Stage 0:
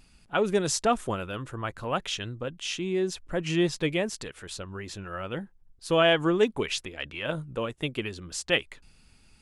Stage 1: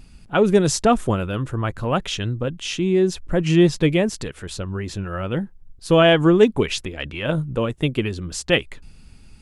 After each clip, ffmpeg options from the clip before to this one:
ffmpeg -i in.wav -af "lowshelf=frequency=370:gain=9.5,volume=4.5dB" out.wav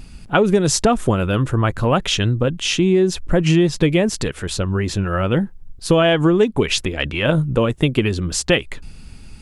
ffmpeg -i in.wav -af "acompressor=threshold=-19dB:ratio=6,volume=7.5dB" out.wav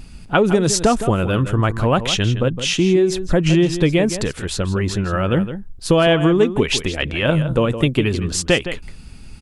ffmpeg -i in.wav -filter_complex "[0:a]asplit=2[link_01][link_02];[link_02]adelay=163.3,volume=-11dB,highshelf=frequency=4000:gain=-3.67[link_03];[link_01][link_03]amix=inputs=2:normalize=0" out.wav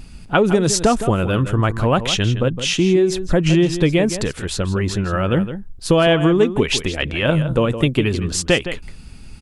ffmpeg -i in.wav -af anull out.wav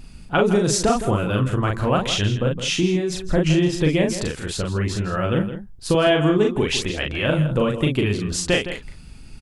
ffmpeg -i in.wav -filter_complex "[0:a]asplit=2[link_01][link_02];[link_02]adelay=39,volume=-3dB[link_03];[link_01][link_03]amix=inputs=2:normalize=0,volume=-4.5dB" out.wav

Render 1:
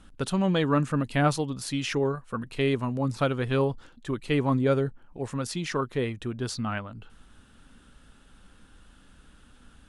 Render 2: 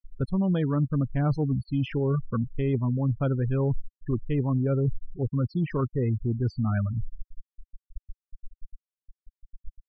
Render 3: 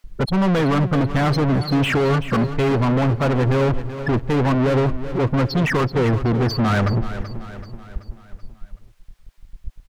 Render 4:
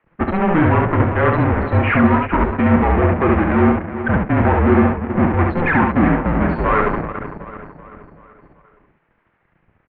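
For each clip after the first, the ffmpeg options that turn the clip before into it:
ffmpeg -i in.wav -af "afftfilt=real='re*gte(hypot(re,im),0.0501)':imag='im*gte(hypot(re,im),0.0501)':win_size=1024:overlap=0.75,aemphasis=mode=reproduction:type=riaa,areverse,acompressor=threshold=-27dB:ratio=6,areverse,volume=4dB" out.wav
ffmpeg -i in.wav -filter_complex "[0:a]alimiter=limit=-20dB:level=0:latency=1:release=45,asplit=2[link_01][link_02];[link_02]highpass=frequency=720:poles=1,volume=35dB,asoftclip=type=tanh:threshold=-20dB[link_03];[link_01][link_03]amix=inputs=2:normalize=0,lowpass=frequency=2100:poles=1,volume=-6dB,aecho=1:1:381|762|1143|1524|1905:0.237|0.121|0.0617|0.0315|0.016,volume=7.5dB" out.wav
ffmpeg -i in.wav -af "aeval=exprs='0.335*(cos(1*acos(clip(val(0)/0.335,-1,1)))-cos(1*PI/2))+0.0422*(cos(8*acos(clip(val(0)/0.335,-1,1)))-cos(8*PI/2))':channel_layout=same,aecho=1:1:29|70:0.299|0.708,highpass=frequency=270:width_type=q:width=0.5412,highpass=frequency=270:width_type=q:width=1.307,lowpass=frequency=2400:width_type=q:width=0.5176,lowpass=frequency=2400:width_type=q:width=0.7071,lowpass=frequency=2400:width_type=q:width=1.932,afreqshift=-180,volume=5dB" out.wav

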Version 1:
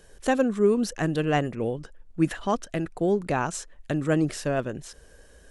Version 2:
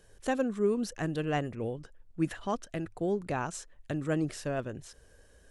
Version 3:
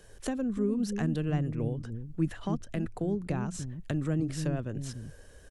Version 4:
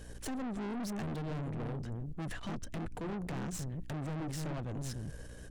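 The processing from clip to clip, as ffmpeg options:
ffmpeg -i in.wav -af "equalizer=frequency=99:width_type=o:width=0.27:gain=10,volume=-7dB" out.wav
ffmpeg -i in.wav -filter_complex "[0:a]acrossover=split=250[link_01][link_02];[link_01]aecho=1:1:294:0.668[link_03];[link_02]acompressor=threshold=-41dB:ratio=10[link_04];[link_03][link_04]amix=inputs=2:normalize=0,volume=5.5dB" out.wav
ffmpeg -i in.wav -af "aeval=exprs='val(0)+0.00251*(sin(2*PI*60*n/s)+sin(2*PI*2*60*n/s)/2+sin(2*PI*3*60*n/s)/3+sin(2*PI*4*60*n/s)/4+sin(2*PI*5*60*n/s)/5)':channel_layout=same,aeval=exprs='(tanh(112*val(0)+0.35)-tanh(0.35))/112':channel_layout=same,volume=4.5dB" out.wav

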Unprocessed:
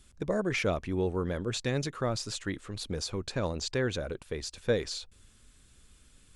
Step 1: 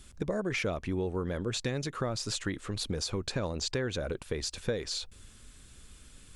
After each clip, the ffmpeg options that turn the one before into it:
ffmpeg -i in.wav -af "acompressor=threshold=-36dB:ratio=4,volume=6dB" out.wav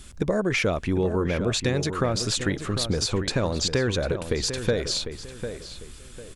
ffmpeg -i in.wav -filter_complex "[0:a]asplit=2[link_01][link_02];[link_02]adelay=749,lowpass=frequency=2700:poles=1,volume=-9dB,asplit=2[link_03][link_04];[link_04]adelay=749,lowpass=frequency=2700:poles=1,volume=0.3,asplit=2[link_05][link_06];[link_06]adelay=749,lowpass=frequency=2700:poles=1,volume=0.3[link_07];[link_01][link_03][link_05][link_07]amix=inputs=4:normalize=0,volume=8dB" out.wav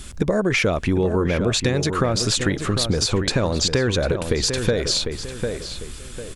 ffmpeg -i in.wav -af "acompressor=threshold=-27dB:ratio=2,volume=8dB" out.wav

